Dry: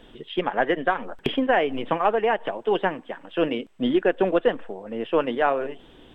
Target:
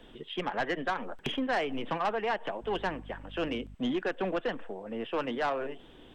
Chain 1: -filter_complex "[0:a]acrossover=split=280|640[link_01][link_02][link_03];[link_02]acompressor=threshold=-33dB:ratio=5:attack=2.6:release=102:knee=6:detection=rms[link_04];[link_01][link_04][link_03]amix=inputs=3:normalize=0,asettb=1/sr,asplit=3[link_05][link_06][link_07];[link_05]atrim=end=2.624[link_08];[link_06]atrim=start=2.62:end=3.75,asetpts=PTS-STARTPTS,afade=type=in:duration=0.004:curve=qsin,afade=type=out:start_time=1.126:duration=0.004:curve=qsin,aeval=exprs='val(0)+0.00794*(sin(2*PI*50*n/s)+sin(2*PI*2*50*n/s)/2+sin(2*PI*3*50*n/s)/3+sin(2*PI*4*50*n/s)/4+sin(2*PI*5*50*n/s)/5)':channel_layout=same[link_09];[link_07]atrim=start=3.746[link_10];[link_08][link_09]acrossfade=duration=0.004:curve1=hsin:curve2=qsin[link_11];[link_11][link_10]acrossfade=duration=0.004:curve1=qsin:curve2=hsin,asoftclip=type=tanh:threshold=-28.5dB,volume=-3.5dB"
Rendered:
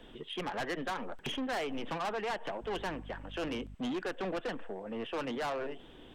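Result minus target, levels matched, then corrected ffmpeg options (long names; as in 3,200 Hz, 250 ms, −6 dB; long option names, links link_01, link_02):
soft clipping: distortion +7 dB
-filter_complex "[0:a]acrossover=split=280|640[link_01][link_02][link_03];[link_02]acompressor=threshold=-33dB:ratio=5:attack=2.6:release=102:knee=6:detection=rms[link_04];[link_01][link_04][link_03]amix=inputs=3:normalize=0,asettb=1/sr,asplit=3[link_05][link_06][link_07];[link_05]atrim=end=2.624[link_08];[link_06]atrim=start=2.62:end=3.75,asetpts=PTS-STARTPTS,afade=type=in:duration=0.004:curve=qsin,afade=type=out:start_time=1.126:duration=0.004:curve=qsin,aeval=exprs='val(0)+0.00794*(sin(2*PI*50*n/s)+sin(2*PI*2*50*n/s)/2+sin(2*PI*3*50*n/s)/3+sin(2*PI*4*50*n/s)/4+sin(2*PI*5*50*n/s)/5)':channel_layout=same[link_09];[link_07]atrim=start=3.746[link_10];[link_08][link_09]acrossfade=duration=0.004:curve1=hsin:curve2=qsin[link_11];[link_11][link_10]acrossfade=duration=0.004:curve1=qsin:curve2=hsin,asoftclip=type=tanh:threshold=-20dB,volume=-3.5dB"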